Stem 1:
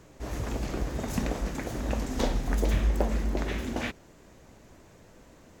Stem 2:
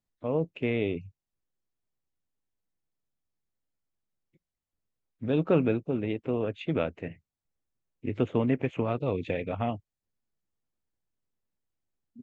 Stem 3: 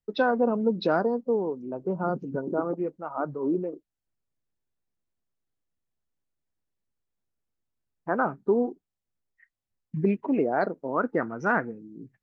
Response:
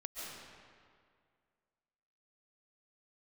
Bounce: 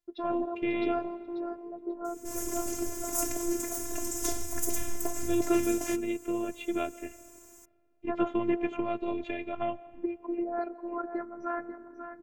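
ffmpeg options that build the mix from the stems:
-filter_complex "[0:a]highshelf=f=8200:g=-8,aexciter=amount=15.4:drive=5.2:freq=6100,adelay=2050,volume=0.794[s0];[1:a]volume=1.12,asplit=2[s1][s2];[s2]volume=0.141[s3];[2:a]highshelf=f=2300:g=-10,volume=0.562,asplit=3[s4][s5][s6];[s5]volume=0.15[s7];[s6]volume=0.355[s8];[3:a]atrim=start_sample=2205[s9];[s3][s7]amix=inputs=2:normalize=0[s10];[s10][s9]afir=irnorm=-1:irlink=0[s11];[s8]aecho=0:1:540|1080|1620:1|0.18|0.0324[s12];[s0][s1][s4][s11][s12]amix=inputs=5:normalize=0,afftfilt=real='hypot(re,im)*cos(PI*b)':imag='0':win_size=512:overlap=0.75"

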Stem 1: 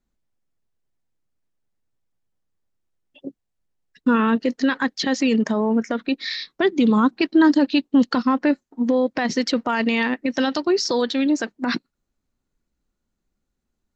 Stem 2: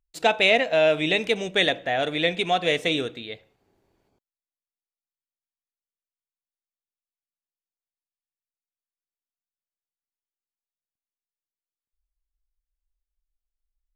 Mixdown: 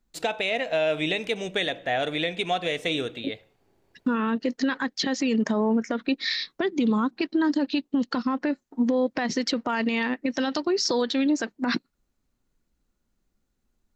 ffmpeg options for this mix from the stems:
-filter_complex "[0:a]acompressor=threshold=0.126:ratio=6,volume=1.26[s0];[1:a]volume=1.12[s1];[s0][s1]amix=inputs=2:normalize=0,alimiter=limit=0.178:level=0:latency=1:release=288"

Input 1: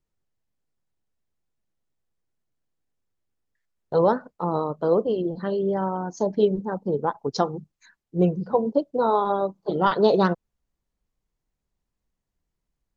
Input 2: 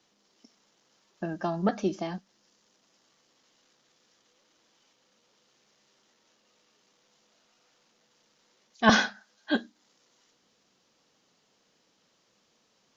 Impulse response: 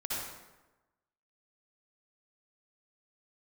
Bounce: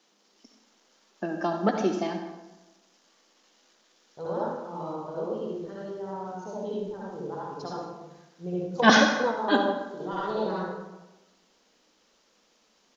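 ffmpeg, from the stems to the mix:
-filter_complex "[0:a]adelay=250,volume=0.501,asplit=2[s0][s1];[s1]volume=0.376[s2];[1:a]highpass=f=200:w=0.5412,highpass=f=200:w=1.3066,volume=1.06,asplit=3[s3][s4][s5];[s4]volume=0.473[s6];[s5]apad=whole_len=582978[s7];[s0][s7]sidechaingate=range=0.0224:threshold=0.00178:ratio=16:detection=peak[s8];[2:a]atrim=start_sample=2205[s9];[s2][s6]amix=inputs=2:normalize=0[s10];[s10][s9]afir=irnorm=-1:irlink=0[s11];[s8][s3][s11]amix=inputs=3:normalize=0"

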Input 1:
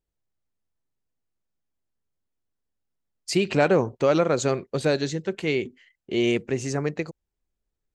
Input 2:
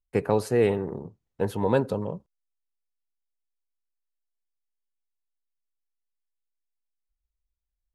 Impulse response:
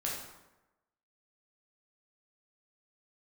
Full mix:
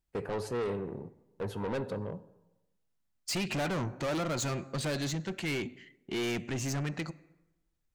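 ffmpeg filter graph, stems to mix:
-filter_complex "[0:a]equalizer=f=450:t=o:w=0.55:g=-11.5,volume=1.12,asplit=2[s0][s1];[s1]volume=0.0708[s2];[1:a]aemphasis=mode=reproduction:type=50fm,agate=range=0.158:threshold=0.0112:ratio=16:detection=peak,highshelf=f=3500:g=7.5,volume=0.531,asplit=2[s3][s4];[s4]volume=0.126[s5];[2:a]atrim=start_sample=2205[s6];[s2][s5]amix=inputs=2:normalize=0[s7];[s7][s6]afir=irnorm=-1:irlink=0[s8];[s0][s3][s8]amix=inputs=3:normalize=0,asoftclip=type=tanh:threshold=0.0335"

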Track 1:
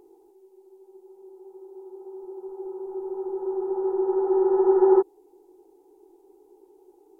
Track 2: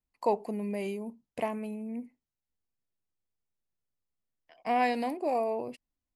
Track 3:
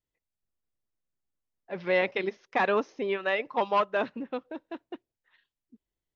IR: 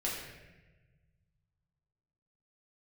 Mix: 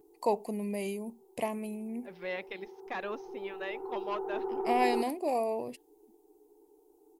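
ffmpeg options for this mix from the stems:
-filter_complex "[0:a]lowshelf=f=440:g=6.5,aecho=1:1:6.7:0.96,volume=0.266[s0];[1:a]equalizer=f=1500:t=o:w=0.44:g=-8.5,volume=0.891[s1];[2:a]adelay=350,volume=0.237[s2];[s0][s1][s2]amix=inputs=3:normalize=0,crystalizer=i=1.5:c=0"

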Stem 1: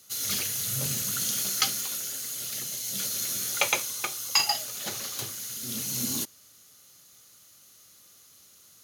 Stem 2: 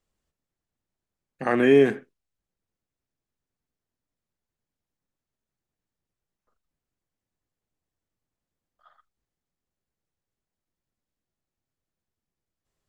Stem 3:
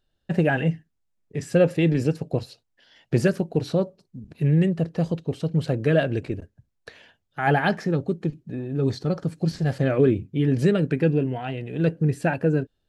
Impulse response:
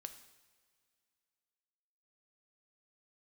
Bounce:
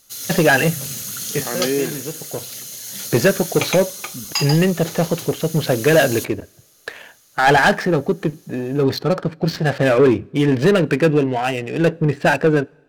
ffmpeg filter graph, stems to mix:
-filter_complex "[0:a]volume=1.12[s0];[1:a]volume=0.596,asplit=2[s1][s2];[2:a]asplit=2[s3][s4];[s4]highpass=f=720:p=1,volume=7.08,asoftclip=type=tanh:threshold=0.447[s5];[s3][s5]amix=inputs=2:normalize=0,lowpass=f=5500:p=1,volume=0.501,adynamicsmooth=sensitivity=6.5:basefreq=1400,volume=1.33,asplit=2[s6][s7];[s7]volume=0.224[s8];[s2]apad=whole_len=568146[s9];[s6][s9]sidechaincompress=threshold=0.01:ratio=8:attack=16:release=745[s10];[3:a]atrim=start_sample=2205[s11];[s8][s11]afir=irnorm=-1:irlink=0[s12];[s0][s1][s10][s12]amix=inputs=4:normalize=0"

